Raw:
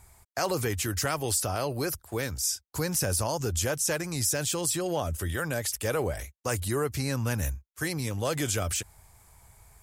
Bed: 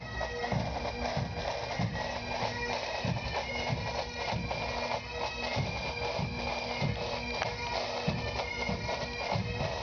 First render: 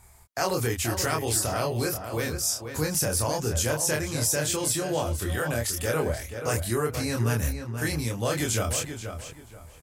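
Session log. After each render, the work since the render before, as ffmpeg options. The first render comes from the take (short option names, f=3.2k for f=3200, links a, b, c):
-filter_complex "[0:a]asplit=2[a][b];[b]adelay=26,volume=-2.5dB[c];[a][c]amix=inputs=2:normalize=0,asplit=2[d][e];[e]adelay=481,lowpass=f=3.4k:p=1,volume=-8dB,asplit=2[f][g];[g]adelay=481,lowpass=f=3.4k:p=1,volume=0.27,asplit=2[h][i];[i]adelay=481,lowpass=f=3.4k:p=1,volume=0.27[j];[d][f][h][j]amix=inputs=4:normalize=0"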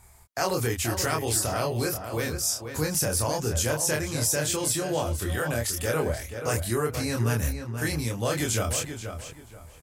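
-af anull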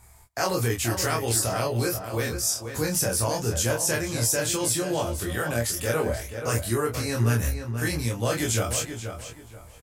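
-filter_complex "[0:a]asplit=2[a][b];[b]adelay=17,volume=-5.5dB[c];[a][c]amix=inputs=2:normalize=0,asplit=2[d][e];[e]adelay=186.6,volume=-28dB,highshelf=f=4k:g=-4.2[f];[d][f]amix=inputs=2:normalize=0"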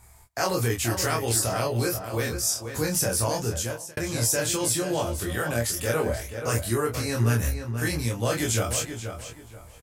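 -filter_complex "[0:a]asplit=2[a][b];[a]atrim=end=3.97,asetpts=PTS-STARTPTS,afade=t=out:st=3.4:d=0.57[c];[b]atrim=start=3.97,asetpts=PTS-STARTPTS,afade=t=in:d=0.004:c=hsin[d];[c][d]concat=n=2:v=0:a=1"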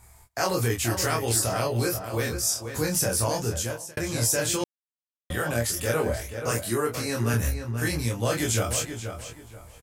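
-filter_complex "[0:a]asettb=1/sr,asplit=3[a][b][c];[a]atrim=end=6.514[d];[b]atrim=start=6.51:end=7.34,asetpts=PTS-STARTPTS,afade=t=in:d=0.004:c=qsin,afade=t=out:st=0.826:d=0.004:c=qsin,highpass=140[e];[c]atrim=start=7.336[f];[d][e]acrossfade=d=0.004:c1=hsin:c2=qsin[g];[g][f]acrossfade=d=0.004:c1=qsin:c2=hsin,asplit=3[h][i][j];[h]atrim=end=4.64,asetpts=PTS-STARTPTS,afade=t=out:st=4.636:d=0.004:c=hsin[k];[i]atrim=start=4.64:end=5.3,asetpts=PTS-STARTPTS,volume=0[l];[j]atrim=start=5.3,asetpts=PTS-STARTPTS,afade=t=in:d=0.004:c=hsin[m];[k][l][m]concat=n=3:v=0:a=1"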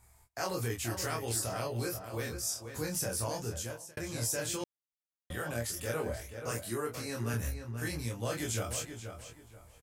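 -af "volume=-9.5dB"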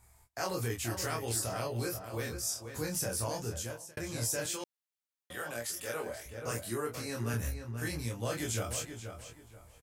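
-filter_complex "[0:a]asettb=1/sr,asplit=3[a][b][c];[a]atrim=end=4.464[d];[b]atrim=start=4.46:end=6.26,asetpts=PTS-STARTPTS,afade=t=in:d=0.004:c=qsin,afade=t=out:st=1.796:d=0.004:c=qsin,highpass=f=480:p=1[e];[c]atrim=start=6.256[f];[d][e]acrossfade=d=0.004:c1=hsin:c2=qsin[g];[g][f]acrossfade=d=0.004:c1=qsin:c2=hsin"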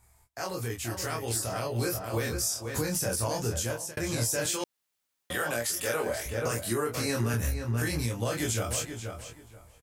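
-af "dynaudnorm=f=570:g=7:m=12dB,alimiter=limit=-19dB:level=0:latency=1:release=318"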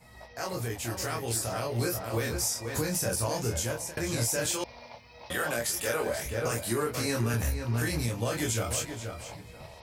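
-filter_complex "[1:a]volume=-14dB[a];[0:a][a]amix=inputs=2:normalize=0"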